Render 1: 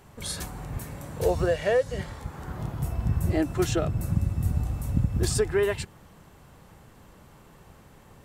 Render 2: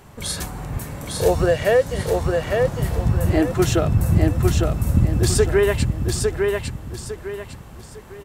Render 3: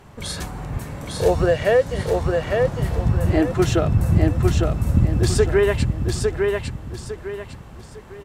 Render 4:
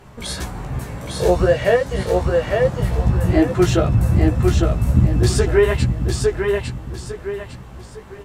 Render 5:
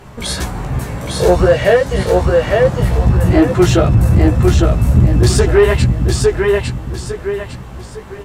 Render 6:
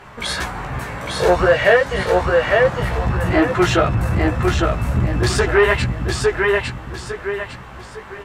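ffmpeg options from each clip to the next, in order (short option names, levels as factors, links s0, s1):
-af "aecho=1:1:854|1708|2562|3416:0.668|0.221|0.0728|0.024,volume=2.11"
-af "highshelf=f=8700:g=-11.5"
-af "flanger=delay=15:depth=2.1:speed=2.6,volume=1.78"
-af "acontrast=71"
-af "equalizer=f=1600:w=0.42:g=13,volume=0.355"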